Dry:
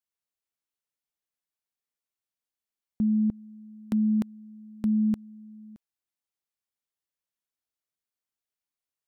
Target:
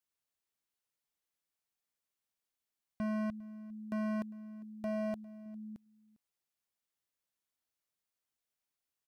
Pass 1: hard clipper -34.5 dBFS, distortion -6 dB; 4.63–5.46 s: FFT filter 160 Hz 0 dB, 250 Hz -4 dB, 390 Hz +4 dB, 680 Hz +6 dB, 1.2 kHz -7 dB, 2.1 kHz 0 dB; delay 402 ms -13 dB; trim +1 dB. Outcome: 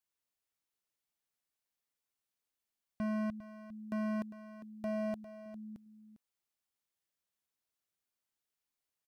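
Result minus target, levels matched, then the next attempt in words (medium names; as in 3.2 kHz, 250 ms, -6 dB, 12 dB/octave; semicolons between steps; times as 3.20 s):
echo-to-direct +9 dB
hard clipper -34.5 dBFS, distortion -6 dB; 4.63–5.46 s: FFT filter 160 Hz 0 dB, 250 Hz -4 dB, 390 Hz +4 dB, 680 Hz +6 dB, 1.2 kHz -7 dB, 2.1 kHz 0 dB; delay 402 ms -22 dB; trim +1 dB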